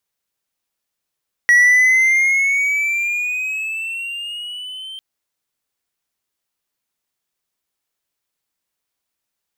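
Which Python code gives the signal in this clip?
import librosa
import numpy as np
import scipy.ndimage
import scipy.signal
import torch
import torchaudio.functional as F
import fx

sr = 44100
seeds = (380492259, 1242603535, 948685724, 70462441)

y = fx.riser_tone(sr, length_s=3.5, level_db=-5.5, wave='triangle', hz=1920.0, rise_st=8.5, swell_db=-22.0)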